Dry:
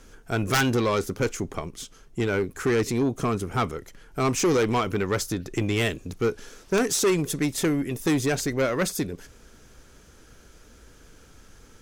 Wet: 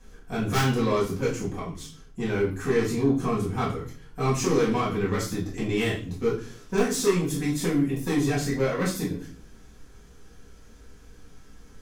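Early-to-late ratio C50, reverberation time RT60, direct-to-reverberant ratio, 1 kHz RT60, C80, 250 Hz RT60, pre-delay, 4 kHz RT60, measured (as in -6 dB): 6.5 dB, 0.40 s, -8.0 dB, 0.40 s, 12.5 dB, 0.65 s, 4 ms, 0.40 s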